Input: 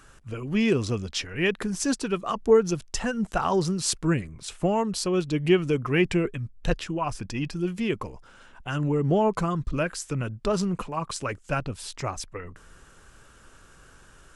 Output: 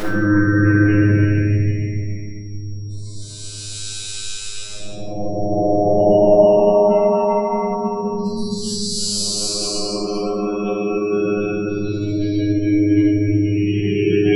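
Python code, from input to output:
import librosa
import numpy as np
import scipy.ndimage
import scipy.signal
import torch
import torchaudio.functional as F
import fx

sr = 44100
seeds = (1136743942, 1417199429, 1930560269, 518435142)

y = fx.paulstretch(x, sr, seeds[0], factor=10.0, window_s=0.25, from_s=4.07)
y = fx.spec_gate(y, sr, threshold_db=-25, keep='strong')
y = fx.robotise(y, sr, hz=103.0)
y = y + 10.0 ** (-55.0 / 20.0) * np.sin(2.0 * np.pi * 5600.0 * np.arange(len(y)) / sr)
y = fx.room_shoebox(y, sr, seeds[1], volume_m3=370.0, walls='mixed', distance_m=6.0)
y = y * 10.0 ** (-2.0 / 20.0)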